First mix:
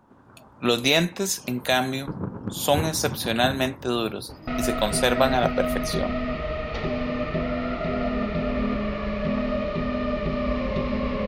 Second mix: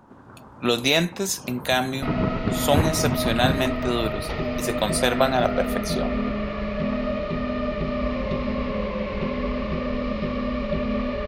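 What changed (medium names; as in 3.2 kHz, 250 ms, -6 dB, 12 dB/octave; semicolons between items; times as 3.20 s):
first sound +6.0 dB; second sound: entry -2.45 s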